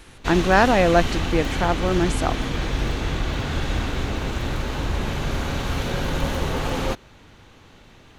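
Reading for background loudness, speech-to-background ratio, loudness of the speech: -26.5 LUFS, 5.5 dB, -21.0 LUFS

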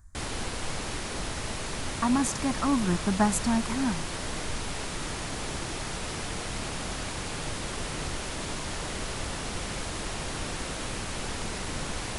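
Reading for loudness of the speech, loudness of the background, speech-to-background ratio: -28.0 LUFS, -34.0 LUFS, 6.0 dB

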